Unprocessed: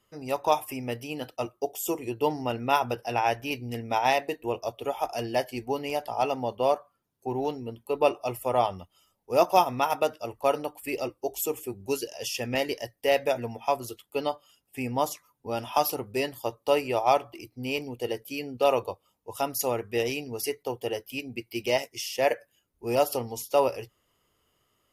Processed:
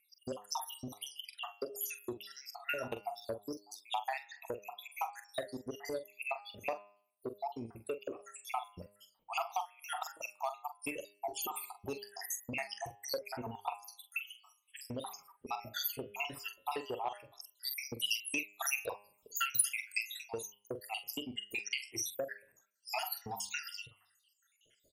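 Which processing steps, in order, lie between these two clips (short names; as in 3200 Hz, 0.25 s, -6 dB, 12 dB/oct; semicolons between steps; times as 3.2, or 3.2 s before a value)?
random spectral dropouts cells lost 83%; compressor 6:1, threshold -42 dBFS, peak gain reduction 23.5 dB; 17.47–19.98 high shelf 2200 Hz +9 dB; vibrato 6 Hz 54 cents; low shelf 370 Hz -7 dB; doubler 44 ms -10 dB; de-hum 102 Hz, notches 34; core saturation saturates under 2200 Hz; gain +8.5 dB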